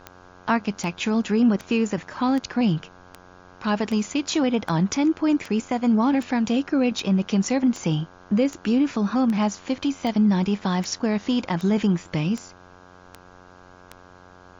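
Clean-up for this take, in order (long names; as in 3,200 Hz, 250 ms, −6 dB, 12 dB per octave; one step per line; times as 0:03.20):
click removal
hum removal 90.7 Hz, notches 18
downward expander −40 dBFS, range −21 dB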